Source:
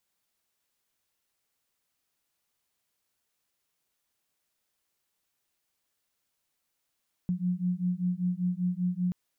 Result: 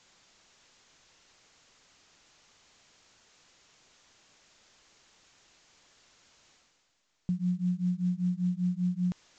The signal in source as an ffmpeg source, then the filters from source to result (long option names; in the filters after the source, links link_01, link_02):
-f lavfi -i "aevalsrc='0.0335*(sin(2*PI*177*t)+sin(2*PI*182.1*t))':duration=1.83:sample_rate=44100"
-af "areverse,acompressor=mode=upward:threshold=-42dB:ratio=2.5,areverse" -ar 16000 -c:a pcm_mulaw